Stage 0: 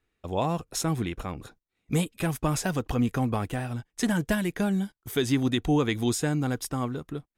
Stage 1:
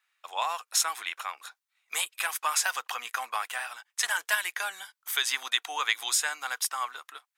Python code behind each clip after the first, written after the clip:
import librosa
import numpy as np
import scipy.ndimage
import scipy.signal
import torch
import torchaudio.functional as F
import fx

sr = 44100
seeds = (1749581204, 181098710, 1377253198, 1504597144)

y = scipy.signal.sosfilt(scipy.signal.butter(4, 1000.0, 'highpass', fs=sr, output='sos'), x)
y = y * librosa.db_to_amplitude(6.5)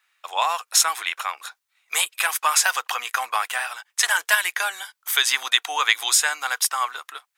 y = fx.peak_eq(x, sr, hz=210.0, db=-9.0, octaves=0.75)
y = y * librosa.db_to_amplitude(8.0)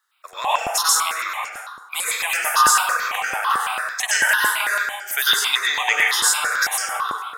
y = fx.rev_plate(x, sr, seeds[0], rt60_s=1.2, hf_ratio=0.55, predelay_ms=85, drr_db=-5.5)
y = fx.phaser_held(y, sr, hz=9.0, low_hz=650.0, high_hz=3800.0)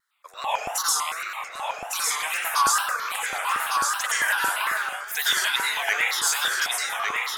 y = fx.wow_flutter(x, sr, seeds[1], rate_hz=2.1, depth_cents=140.0)
y = y + 10.0 ** (-4.0 / 20.0) * np.pad(y, (int(1154 * sr / 1000.0), 0))[:len(y)]
y = y * librosa.db_to_amplitude(-6.0)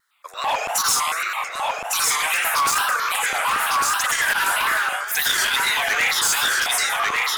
y = np.clip(10.0 ** (22.5 / 20.0) * x, -1.0, 1.0) / 10.0 ** (22.5 / 20.0)
y = fx.transformer_sat(y, sr, knee_hz=760.0)
y = y * librosa.db_to_amplitude(7.5)